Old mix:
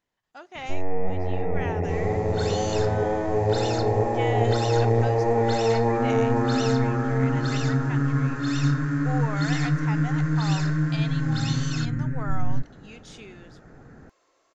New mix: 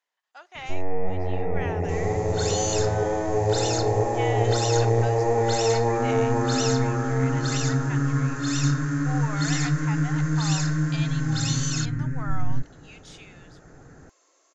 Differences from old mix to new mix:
speech: add high-pass 730 Hz 12 dB/octave; first sound: add peaking EQ 220 Hz -9.5 dB 0.2 oct; second sound: add resonant low-pass 6.9 kHz, resonance Q 4.3

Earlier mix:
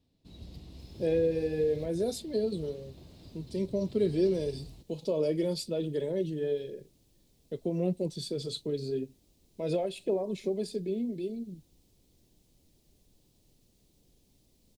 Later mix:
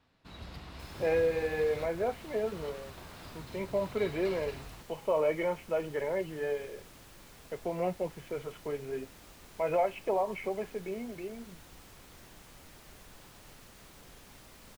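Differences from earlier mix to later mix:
speech: add rippled Chebyshev low-pass 3.1 kHz, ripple 9 dB; second sound +10.0 dB; master: remove FFT filter 330 Hz 0 dB, 610 Hz -8 dB, 1.4 kHz -24 dB, 3.9 kHz -4 dB

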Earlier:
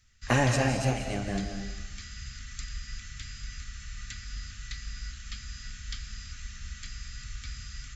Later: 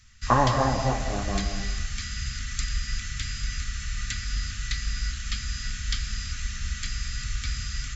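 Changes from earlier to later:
speech: add resonant low-pass 1.1 kHz, resonance Q 5.7; background +9.5 dB

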